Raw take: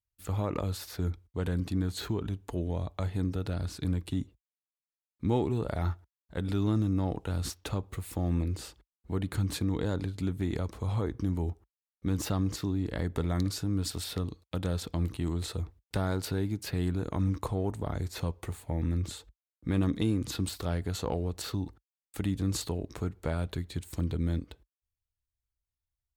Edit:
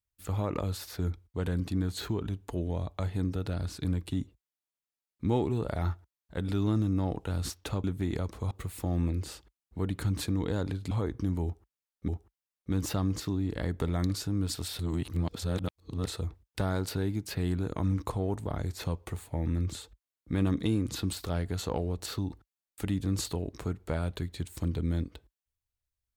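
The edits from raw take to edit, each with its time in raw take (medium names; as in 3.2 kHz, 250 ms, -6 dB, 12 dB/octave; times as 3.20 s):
10.24–10.91 s: move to 7.84 s
11.44–12.08 s: loop, 2 plays
14.15–15.43 s: reverse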